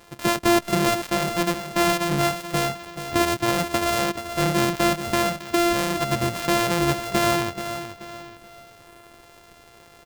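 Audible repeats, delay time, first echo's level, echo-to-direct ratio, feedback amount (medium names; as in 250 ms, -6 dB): 3, 431 ms, -10.0 dB, -9.5 dB, 35%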